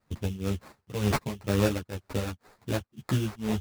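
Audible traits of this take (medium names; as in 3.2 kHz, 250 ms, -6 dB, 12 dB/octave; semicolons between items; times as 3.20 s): a quantiser's noise floor 12-bit, dither triangular; tremolo triangle 2 Hz, depth 95%; aliases and images of a low sample rate 3.1 kHz, jitter 20%; a shimmering, thickened sound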